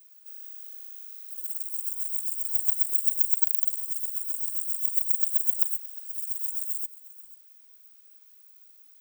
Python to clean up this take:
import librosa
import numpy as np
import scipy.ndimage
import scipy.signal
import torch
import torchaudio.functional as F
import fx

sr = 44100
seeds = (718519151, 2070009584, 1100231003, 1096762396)

y = fx.fix_declip(x, sr, threshold_db=-10.0)
y = fx.fix_echo_inverse(y, sr, delay_ms=487, level_db=-18.0)